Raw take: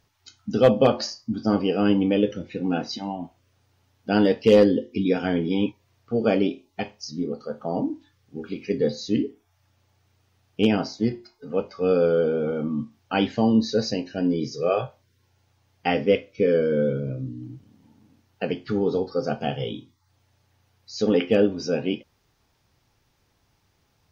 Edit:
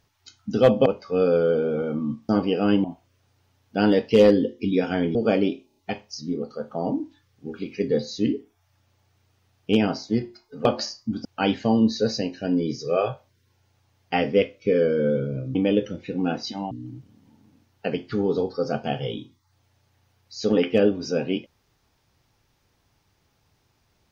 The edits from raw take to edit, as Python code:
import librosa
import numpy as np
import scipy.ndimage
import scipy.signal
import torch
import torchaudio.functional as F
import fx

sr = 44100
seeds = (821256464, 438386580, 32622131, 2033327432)

y = fx.edit(x, sr, fx.swap(start_s=0.86, length_s=0.6, other_s=11.55, other_length_s=1.43),
    fx.move(start_s=2.01, length_s=1.16, to_s=17.28),
    fx.cut(start_s=5.48, length_s=0.66),
    fx.stutter(start_s=6.66, slice_s=0.03, count=4), tone=tone)